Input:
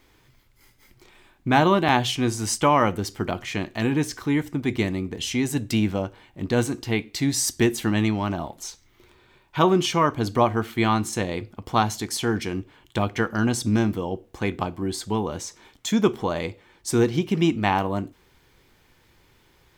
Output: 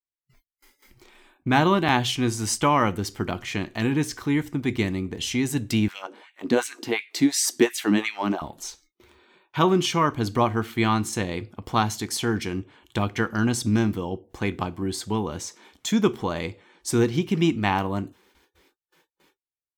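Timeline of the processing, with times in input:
0:05.88–0:08.42: auto-filter high-pass sine 2.8 Hz 220–2,400 Hz
whole clip: noise gate with hold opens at −47 dBFS; dynamic equaliser 610 Hz, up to −4 dB, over −36 dBFS, Q 1.5; noise reduction from a noise print of the clip's start 29 dB

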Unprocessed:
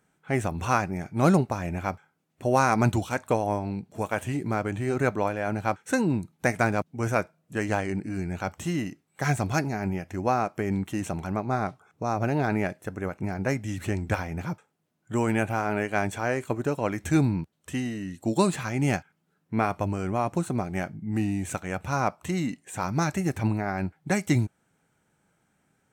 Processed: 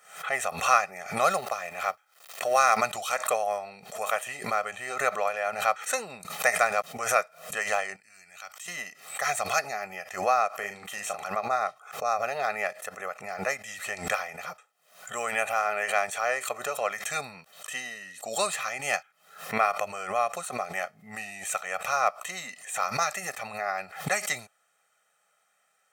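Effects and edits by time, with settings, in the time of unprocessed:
0:01.30–0:02.77: mu-law and A-law mismatch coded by A
0:07.96–0:08.68: guitar amp tone stack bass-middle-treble 5-5-5
0:10.49–0:11.28: double-tracking delay 39 ms −7 dB
whole clip: high-pass filter 850 Hz 12 dB per octave; comb filter 1.6 ms, depth 97%; background raised ahead of every attack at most 110 dB per second; level +1.5 dB

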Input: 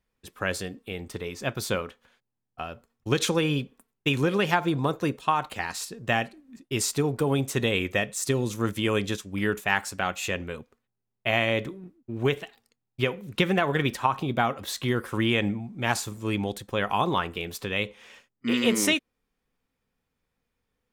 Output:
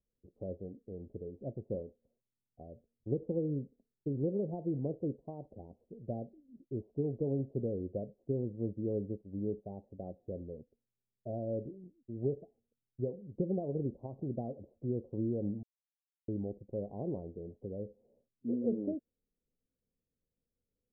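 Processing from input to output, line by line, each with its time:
0:15.63–0:16.28: silence
whole clip: Butterworth low-pass 620 Hz 48 dB per octave; level −8.5 dB

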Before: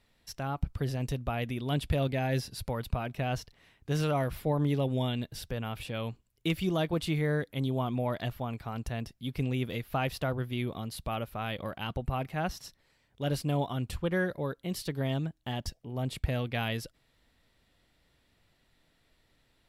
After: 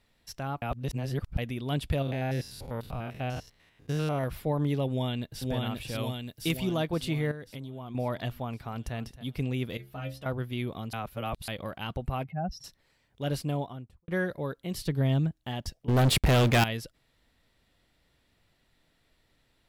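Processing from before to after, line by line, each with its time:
0:00.62–0:01.38: reverse
0:02.02–0:04.24: spectrum averaged block by block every 100 ms
0:04.88–0:05.44: delay throw 530 ms, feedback 60%, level −1.5 dB
0:05.98–0:06.57: high-shelf EQ 5,800 Hz +11 dB
0:07.31–0:07.95: downward compressor 16 to 1, threshold −35 dBFS
0:08.56–0:08.96: delay throw 270 ms, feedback 10%, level −14.5 dB
0:09.77–0:10.26: stiff-string resonator 64 Hz, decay 0.4 s, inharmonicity 0.008
0:10.93–0:11.48: reverse
0:12.24–0:12.64: expanding power law on the bin magnitudes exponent 2.2
0:13.37–0:14.08: fade out and dull
0:14.74–0:15.33: low-shelf EQ 200 Hz +10.5 dB
0:15.88–0:16.64: leveller curve on the samples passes 5

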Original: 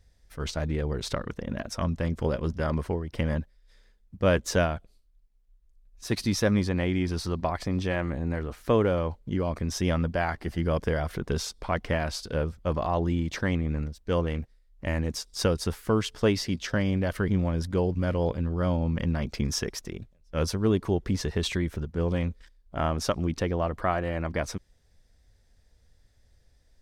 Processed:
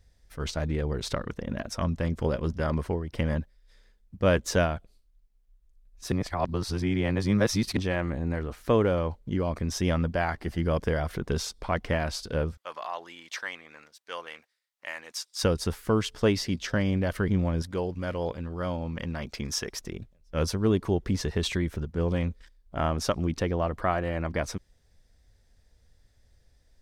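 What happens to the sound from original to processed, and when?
0:06.12–0:07.77: reverse
0:12.57–0:15.43: high-pass filter 1,100 Hz
0:17.62–0:19.73: low-shelf EQ 390 Hz −8 dB

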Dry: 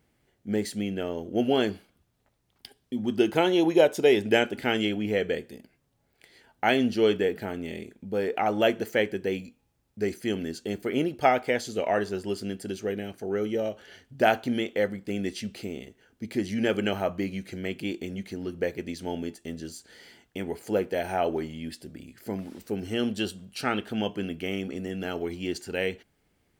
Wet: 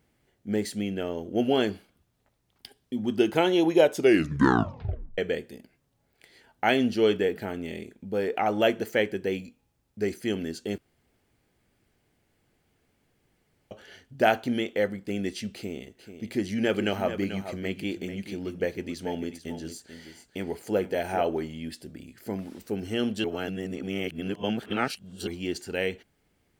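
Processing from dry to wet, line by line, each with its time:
0:03.94: tape stop 1.24 s
0:10.78–0:13.71: fill with room tone
0:15.55–0:21.22: single-tap delay 438 ms −10.5 dB
0:23.24–0:25.27: reverse

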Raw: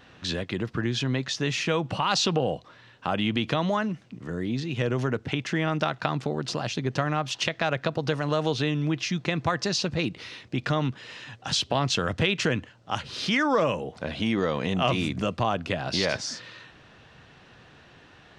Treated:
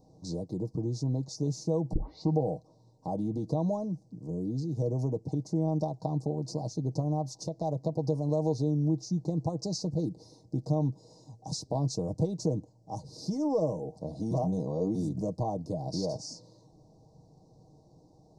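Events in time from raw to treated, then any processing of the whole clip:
0:01.93: tape start 0.42 s
0:14.31–0:14.95: reverse
whole clip: inverse Chebyshev band-stop filter 1,300–3,300 Hz, stop band 40 dB; low-shelf EQ 460 Hz +5 dB; comb filter 6.4 ms, depth 47%; level −8 dB

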